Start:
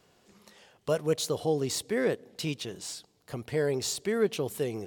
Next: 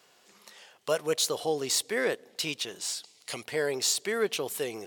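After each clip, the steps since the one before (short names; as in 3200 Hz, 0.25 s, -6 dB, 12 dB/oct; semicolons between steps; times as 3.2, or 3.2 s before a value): HPF 970 Hz 6 dB/oct; spectral gain 3.04–3.43, 1900–11000 Hz +10 dB; gain +6 dB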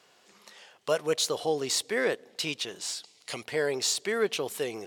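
high shelf 11000 Hz -10.5 dB; gain +1 dB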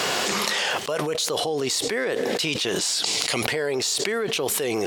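fast leveller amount 100%; gain -2.5 dB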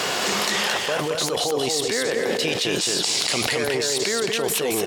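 feedback echo 0.221 s, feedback 24%, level -3 dB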